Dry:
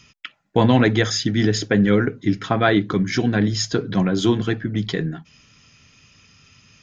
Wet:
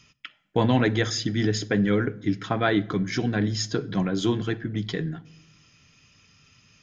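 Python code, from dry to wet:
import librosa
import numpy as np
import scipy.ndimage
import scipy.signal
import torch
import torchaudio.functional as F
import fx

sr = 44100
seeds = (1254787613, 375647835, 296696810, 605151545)

y = fx.room_shoebox(x, sr, seeds[0], volume_m3=3000.0, walls='furnished', distance_m=0.44)
y = F.gain(torch.from_numpy(y), -5.5).numpy()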